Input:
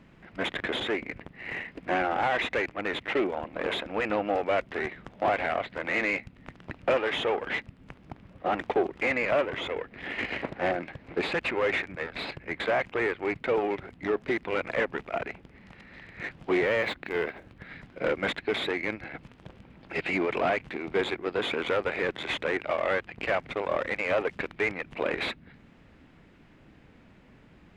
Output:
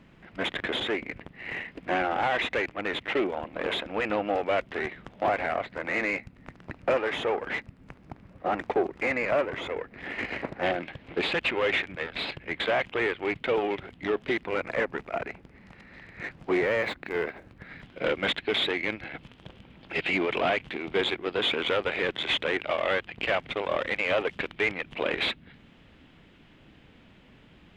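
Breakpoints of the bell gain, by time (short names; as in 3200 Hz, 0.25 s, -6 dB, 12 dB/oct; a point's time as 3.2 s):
bell 3200 Hz 0.61 oct
+2.5 dB
from 5.27 s -4 dB
from 10.63 s +8 dB
from 14.43 s -2.5 dB
from 17.8 s +9 dB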